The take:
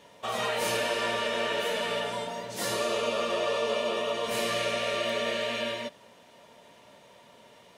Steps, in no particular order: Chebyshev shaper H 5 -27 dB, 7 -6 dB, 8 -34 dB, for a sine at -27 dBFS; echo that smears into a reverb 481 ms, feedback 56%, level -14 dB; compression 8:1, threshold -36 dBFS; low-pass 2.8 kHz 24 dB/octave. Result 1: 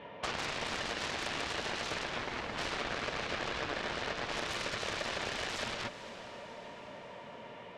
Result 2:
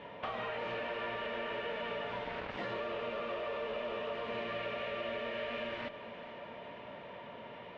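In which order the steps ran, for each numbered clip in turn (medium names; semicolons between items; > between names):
low-pass > compression > Chebyshev shaper > echo that smears into a reverb; Chebyshev shaper > low-pass > compression > echo that smears into a reverb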